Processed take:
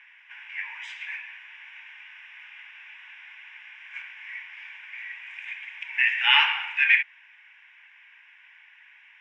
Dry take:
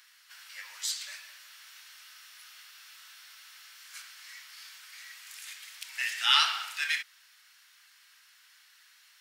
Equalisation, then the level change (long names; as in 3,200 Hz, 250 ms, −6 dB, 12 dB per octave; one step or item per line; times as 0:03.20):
loudspeaker in its box 480–2,500 Hz, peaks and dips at 590 Hz +4 dB, 880 Hz +8 dB, 1,400 Hz +6 dB, 2,400 Hz +6 dB
spectral tilt +5 dB per octave
phaser with its sweep stopped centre 880 Hz, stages 8
+5.0 dB